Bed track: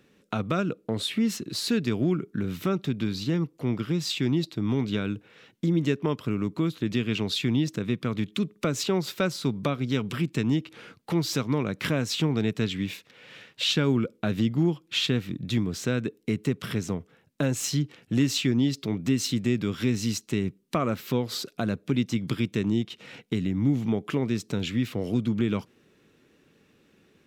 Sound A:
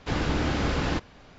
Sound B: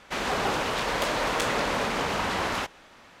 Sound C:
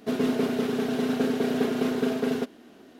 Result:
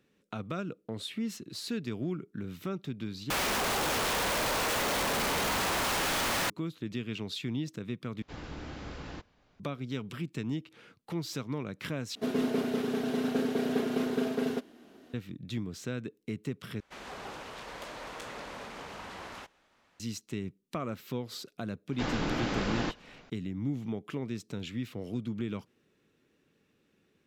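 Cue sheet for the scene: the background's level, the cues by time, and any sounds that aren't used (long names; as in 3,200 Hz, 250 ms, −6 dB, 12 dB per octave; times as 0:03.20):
bed track −9.5 dB
0:03.30: overwrite with B −1.5 dB + sign of each sample alone
0:08.22: overwrite with A −16 dB
0:12.15: overwrite with C −4.5 dB
0:16.80: overwrite with B −16 dB
0:21.92: mix in A −4 dB + parametric band 73 Hz −14 dB 0.89 octaves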